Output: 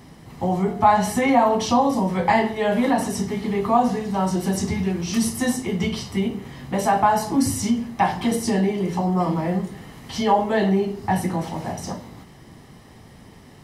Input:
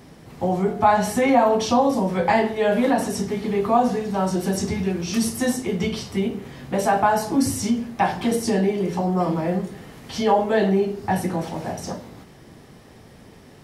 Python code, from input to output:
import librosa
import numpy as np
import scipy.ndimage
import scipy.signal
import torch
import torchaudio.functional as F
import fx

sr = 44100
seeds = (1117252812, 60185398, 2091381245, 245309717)

y = x + 0.31 * np.pad(x, (int(1.0 * sr / 1000.0), 0))[:len(x)]